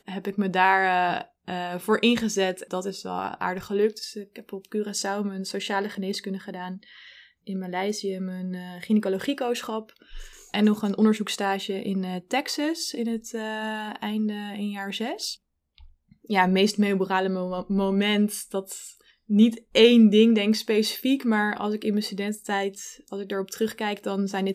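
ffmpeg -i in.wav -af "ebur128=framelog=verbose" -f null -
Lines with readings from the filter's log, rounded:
Integrated loudness:
  I:         -25.0 LUFS
  Threshold: -35.6 LUFS
Loudness range:
  LRA:        10.1 LU
  Threshold: -45.6 LUFS
  LRA low:   -30.9 LUFS
  LRA high:  -20.9 LUFS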